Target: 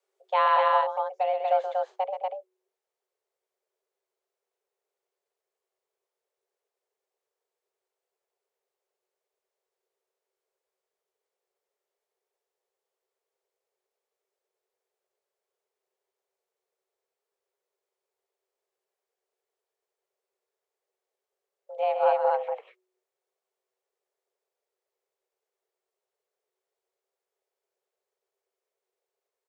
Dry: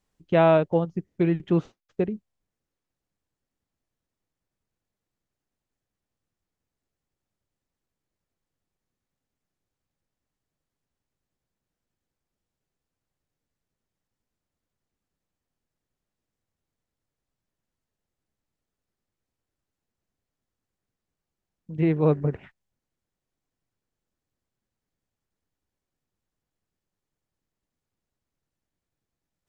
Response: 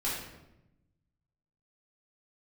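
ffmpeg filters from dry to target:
-af "afreqshift=370,aecho=1:1:128.3|239.1:0.398|0.794,volume=-4.5dB"

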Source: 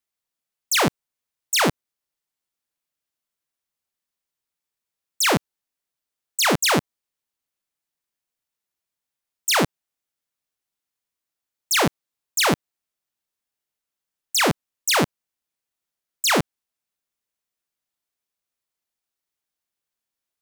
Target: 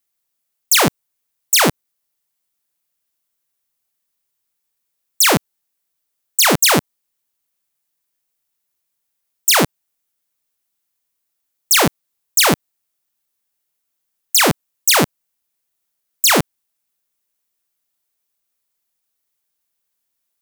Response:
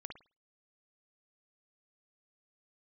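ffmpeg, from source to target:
-af "highshelf=frequency=8500:gain=10,volume=4.5dB"

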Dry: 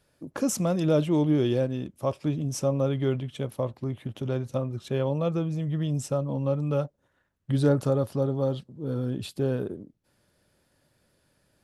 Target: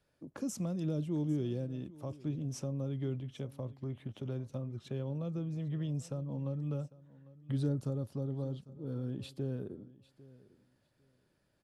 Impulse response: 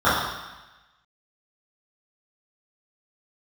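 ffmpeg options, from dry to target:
-filter_complex "[0:a]highshelf=frequency=8300:gain=-10.5,acrossover=split=330|4700[link_01][link_02][link_03];[link_02]acompressor=threshold=-38dB:ratio=6[link_04];[link_01][link_04][link_03]amix=inputs=3:normalize=0,aecho=1:1:800|1600:0.1|0.017,volume=-8dB"

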